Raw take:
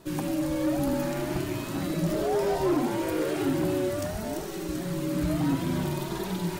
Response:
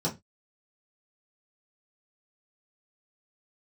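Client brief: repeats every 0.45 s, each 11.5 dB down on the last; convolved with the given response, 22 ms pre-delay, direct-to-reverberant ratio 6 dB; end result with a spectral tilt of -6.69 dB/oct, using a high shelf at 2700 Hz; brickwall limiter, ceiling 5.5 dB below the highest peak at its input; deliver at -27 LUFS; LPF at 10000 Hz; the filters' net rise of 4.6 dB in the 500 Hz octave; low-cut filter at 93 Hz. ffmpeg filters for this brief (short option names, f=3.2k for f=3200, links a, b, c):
-filter_complex "[0:a]highpass=93,lowpass=10k,equalizer=f=500:t=o:g=6,highshelf=f=2.7k:g=7.5,alimiter=limit=-18dB:level=0:latency=1,aecho=1:1:450|900|1350:0.266|0.0718|0.0194,asplit=2[a][b];[1:a]atrim=start_sample=2205,adelay=22[c];[b][c]afir=irnorm=-1:irlink=0,volume=-13.5dB[d];[a][d]amix=inputs=2:normalize=0,volume=-3.5dB"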